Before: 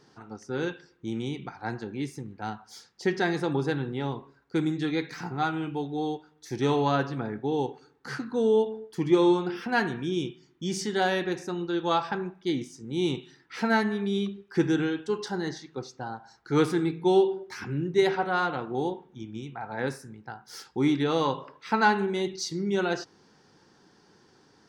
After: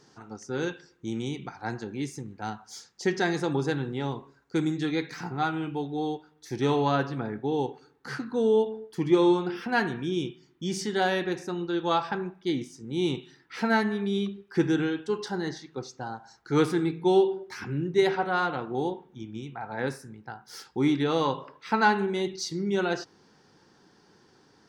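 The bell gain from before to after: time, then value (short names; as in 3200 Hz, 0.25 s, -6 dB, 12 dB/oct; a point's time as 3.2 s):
bell 6800 Hz 0.67 oct
4.56 s +7 dB
5.44 s -1.5 dB
15.72 s -1.5 dB
16.08 s +9 dB
16.71 s -1 dB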